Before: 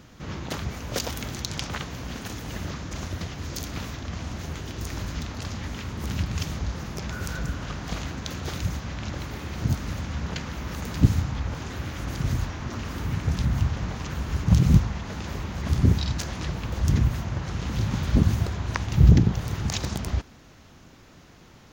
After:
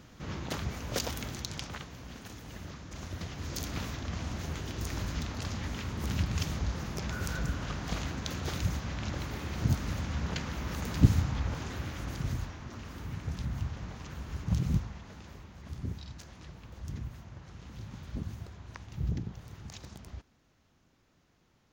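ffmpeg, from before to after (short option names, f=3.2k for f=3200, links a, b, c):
-af "volume=4dB,afade=t=out:st=1.04:d=0.85:silence=0.446684,afade=t=in:st=2.86:d=0.81:silence=0.398107,afade=t=out:st=11.47:d=1.18:silence=0.398107,afade=t=out:st=14.59:d=0.91:silence=0.446684"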